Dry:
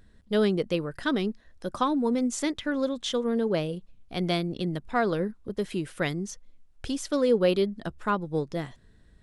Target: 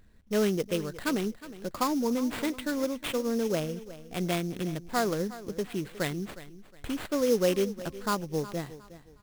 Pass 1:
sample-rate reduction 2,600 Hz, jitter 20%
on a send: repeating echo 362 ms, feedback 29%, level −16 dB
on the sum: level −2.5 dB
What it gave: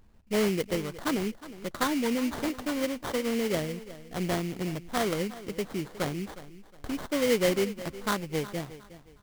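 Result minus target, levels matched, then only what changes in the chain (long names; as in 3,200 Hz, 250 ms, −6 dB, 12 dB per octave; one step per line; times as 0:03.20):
sample-rate reduction: distortion +5 dB
change: sample-rate reduction 5,900 Hz, jitter 20%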